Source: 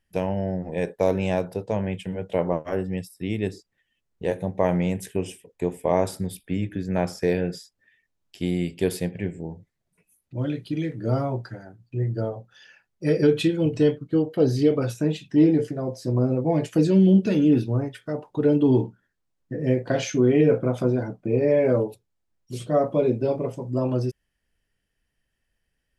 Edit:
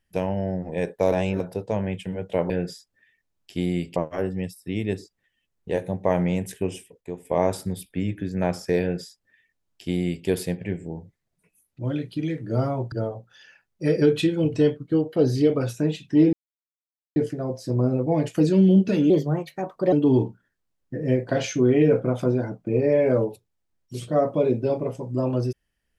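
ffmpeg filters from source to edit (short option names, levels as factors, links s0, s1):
-filter_complex "[0:a]asplit=11[s0][s1][s2][s3][s4][s5][s6][s7][s8][s9][s10];[s0]atrim=end=1.122[s11];[s1]atrim=start=1.118:end=1.402,asetpts=PTS-STARTPTS,areverse[s12];[s2]atrim=start=1.398:end=2.502[s13];[s3]atrim=start=7.348:end=8.812[s14];[s4]atrim=start=2.498:end=5.55,asetpts=PTS-STARTPTS,afade=t=out:st=2.682:d=0.37:c=log:silence=0.398107[s15];[s5]atrim=start=5.55:end=5.79,asetpts=PTS-STARTPTS,volume=0.398[s16];[s6]atrim=start=5.79:end=11.462,asetpts=PTS-STARTPTS,afade=t=in:d=0.37:c=log:silence=0.398107[s17];[s7]atrim=start=12.128:end=15.54,asetpts=PTS-STARTPTS,afade=t=out:st=3.408:d=0.004:c=hsin,apad=pad_dur=0.83[s18];[s8]atrim=start=15.54:end=17.484,asetpts=PTS-STARTPTS,afade=t=in:d=0.004:c=hsin[s19];[s9]atrim=start=17.48:end=18.51,asetpts=PTS-STARTPTS,asetrate=55125,aresample=44100,atrim=end_sample=36338,asetpts=PTS-STARTPTS[s20];[s10]atrim=start=18.506[s21];[s11][s12]acrossfade=d=0.004:c1=hsin:c2=hsin[s22];[s22][s13]acrossfade=d=0.004:c1=hsin:c2=hsin[s23];[s23][s14]acrossfade=d=0.004:c1=hsin:c2=hsin[s24];[s15][s16][s17]concat=n=3:v=0:a=1[s25];[s24][s25]acrossfade=d=0.004:c1=hsin:c2=hsin[s26];[s18][s19]concat=n=2:v=0:a=1[s27];[s26][s27]acrossfade=d=0.004:c1=hsin:c2=hsin[s28];[s28][s20]acrossfade=d=0.004:c1=hsin:c2=hsin[s29];[s29][s21]acrossfade=d=0.004:c1=hsin:c2=hsin"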